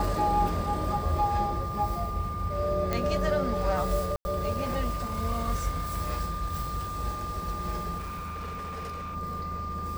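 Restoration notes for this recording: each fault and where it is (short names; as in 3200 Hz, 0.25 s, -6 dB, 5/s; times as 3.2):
tone 1200 Hz -34 dBFS
2.93 pop -14 dBFS
4.16–4.25 gap 90 ms
7.98–9.16 clipped -33 dBFS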